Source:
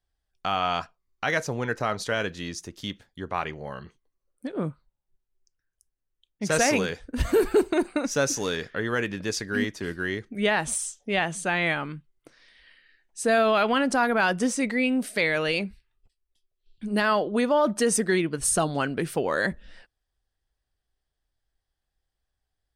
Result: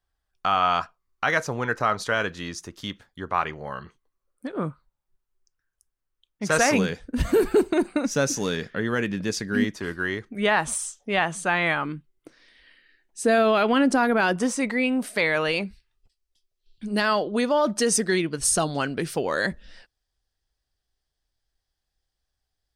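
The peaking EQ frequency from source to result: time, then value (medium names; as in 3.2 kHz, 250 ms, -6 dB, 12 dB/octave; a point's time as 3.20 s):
peaking EQ +7 dB 1 oct
1.2 kHz
from 6.73 s 190 Hz
from 9.76 s 1.1 kHz
from 11.85 s 310 Hz
from 14.36 s 1 kHz
from 15.63 s 5.2 kHz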